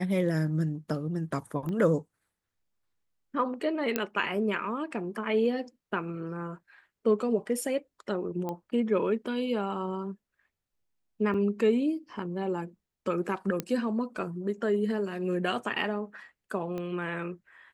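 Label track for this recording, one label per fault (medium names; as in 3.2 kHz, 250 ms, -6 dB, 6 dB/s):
1.690000	1.690000	pop -25 dBFS
3.960000	3.960000	pop -12 dBFS
8.490000	8.490000	pop -21 dBFS
11.340000	11.340000	dropout 4.3 ms
13.600000	13.600000	pop -15 dBFS
16.780000	16.780000	pop -24 dBFS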